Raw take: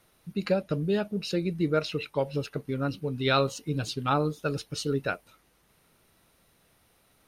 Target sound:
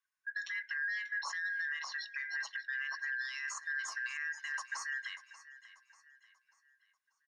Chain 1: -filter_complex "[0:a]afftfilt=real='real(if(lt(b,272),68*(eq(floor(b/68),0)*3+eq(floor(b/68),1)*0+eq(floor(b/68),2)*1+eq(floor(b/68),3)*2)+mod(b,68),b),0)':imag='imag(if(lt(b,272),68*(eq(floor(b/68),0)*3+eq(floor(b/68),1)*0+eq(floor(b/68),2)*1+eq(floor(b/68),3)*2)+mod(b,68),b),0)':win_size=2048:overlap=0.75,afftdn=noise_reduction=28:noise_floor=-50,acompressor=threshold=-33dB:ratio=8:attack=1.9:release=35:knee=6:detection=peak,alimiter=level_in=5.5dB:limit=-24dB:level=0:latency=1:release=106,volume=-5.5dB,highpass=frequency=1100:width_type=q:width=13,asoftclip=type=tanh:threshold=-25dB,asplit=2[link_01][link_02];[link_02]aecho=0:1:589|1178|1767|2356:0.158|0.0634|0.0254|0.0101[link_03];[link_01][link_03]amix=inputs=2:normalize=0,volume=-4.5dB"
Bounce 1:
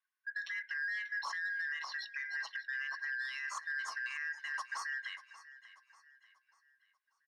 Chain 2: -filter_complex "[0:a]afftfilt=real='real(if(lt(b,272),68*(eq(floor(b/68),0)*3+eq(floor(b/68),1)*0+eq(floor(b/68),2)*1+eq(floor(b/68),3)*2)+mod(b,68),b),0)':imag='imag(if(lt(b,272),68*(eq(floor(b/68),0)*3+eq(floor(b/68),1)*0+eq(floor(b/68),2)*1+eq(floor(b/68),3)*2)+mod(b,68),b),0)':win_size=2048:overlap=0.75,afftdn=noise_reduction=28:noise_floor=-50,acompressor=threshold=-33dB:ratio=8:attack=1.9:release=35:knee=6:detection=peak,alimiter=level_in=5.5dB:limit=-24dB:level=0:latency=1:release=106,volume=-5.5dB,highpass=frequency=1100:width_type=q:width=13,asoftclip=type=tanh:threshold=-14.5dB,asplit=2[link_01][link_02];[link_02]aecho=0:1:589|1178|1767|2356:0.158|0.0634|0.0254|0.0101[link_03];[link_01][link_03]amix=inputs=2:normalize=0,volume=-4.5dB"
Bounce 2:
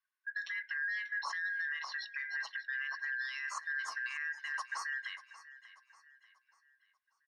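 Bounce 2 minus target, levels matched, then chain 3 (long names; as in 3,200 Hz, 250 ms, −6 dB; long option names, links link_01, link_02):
8,000 Hz band −5.0 dB
-filter_complex "[0:a]afftfilt=real='real(if(lt(b,272),68*(eq(floor(b/68),0)*3+eq(floor(b/68),1)*0+eq(floor(b/68),2)*1+eq(floor(b/68),3)*2)+mod(b,68),b),0)':imag='imag(if(lt(b,272),68*(eq(floor(b/68),0)*3+eq(floor(b/68),1)*0+eq(floor(b/68),2)*1+eq(floor(b/68),3)*2)+mod(b,68),b),0)':win_size=2048:overlap=0.75,afftdn=noise_reduction=28:noise_floor=-50,acompressor=threshold=-33dB:ratio=8:attack=1.9:release=35:knee=6:detection=peak,equalizer=frequency=6900:width_type=o:width=0.48:gain=13,alimiter=level_in=5.5dB:limit=-24dB:level=0:latency=1:release=106,volume=-5.5dB,highpass=frequency=1100:width_type=q:width=13,asoftclip=type=tanh:threshold=-14.5dB,asplit=2[link_01][link_02];[link_02]aecho=0:1:589|1178|1767|2356:0.158|0.0634|0.0254|0.0101[link_03];[link_01][link_03]amix=inputs=2:normalize=0,volume=-4.5dB"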